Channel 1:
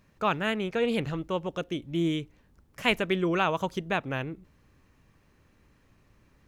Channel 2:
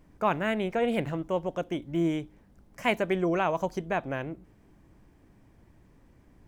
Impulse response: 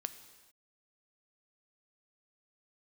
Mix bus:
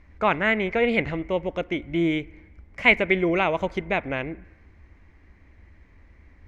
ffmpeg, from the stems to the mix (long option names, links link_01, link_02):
-filter_complex "[0:a]volume=-1dB[link_01];[1:a]lowpass=frequency=2100:width_type=q:width=7.5,volume=-5dB,asplit=2[link_02][link_03];[link_03]volume=-3.5dB[link_04];[2:a]atrim=start_sample=2205[link_05];[link_04][link_05]afir=irnorm=-1:irlink=0[link_06];[link_01][link_02][link_06]amix=inputs=3:normalize=0,lowpass=5700,lowshelf=frequency=100:width_type=q:width=3:gain=6.5"